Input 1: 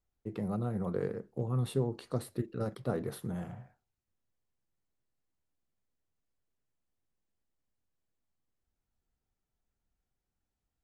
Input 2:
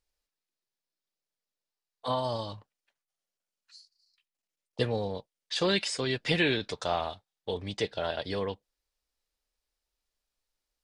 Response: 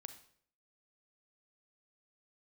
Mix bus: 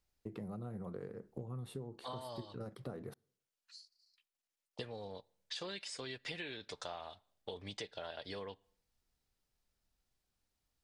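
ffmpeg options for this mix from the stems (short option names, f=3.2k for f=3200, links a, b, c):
-filter_complex "[0:a]volume=-0.5dB,asplit=3[a][b][c];[a]atrim=end=3.14,asetpts=PTS-STARTPTS,afade=t=out:st=3.136:d=0.004:c=hsin[d];[b]atrim=start=3.14:end=4.85,asetpts=PTS-STARTPTS,volume=0[e];[c]atrim=start=4.85,asetpts=PTS-STARTPTS,afade=t=in:d=0.004:c=hsin[f];[d][e][f]concat=n=3:v=0:a=1,asplit=2[g][h];[h]volume=-21.5dB[i];[1:a]lowshelf=f=410:g=-6,volume=-3dB,asplit=2[j][k];[k]volume=-16dB[l];[2:a]atrim=start_sample=2205[m];[i][l]amix=inputs=2:normalize=0[n];[n][m]afir=irnorm=-1:irlink=0[o];[g][j][o]amix=inputs=3:normalize=0,acompressor=threshold=-41dB:ratio=10"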